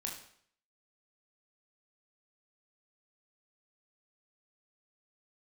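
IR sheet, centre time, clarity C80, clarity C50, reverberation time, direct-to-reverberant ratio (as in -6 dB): 31 ms, 9.5 dB, 5.5 dB, 0.60 s, -0.5 dB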